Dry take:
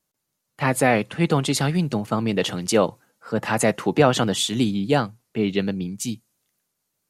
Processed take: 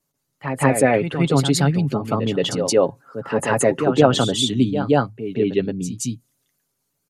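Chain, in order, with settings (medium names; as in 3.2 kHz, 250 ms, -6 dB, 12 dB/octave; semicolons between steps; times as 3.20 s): resonances exaggerated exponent 1.5; comb 7.3 ms, depth 46%; wow and flutter 24 cents; reverse echo 174 ms -8 dB; trim +1.5 dB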